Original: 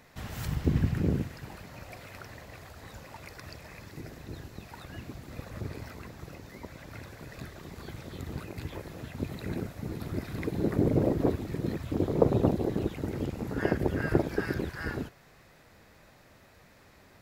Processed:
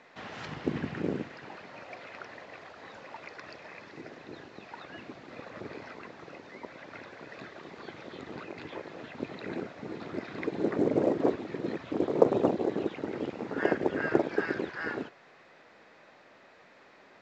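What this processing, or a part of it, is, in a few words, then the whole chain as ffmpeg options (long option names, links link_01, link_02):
telephone: -af "highpass=310,lowpass=3500,volume=3dB" -ar 16000 -c:a pcm_mulaw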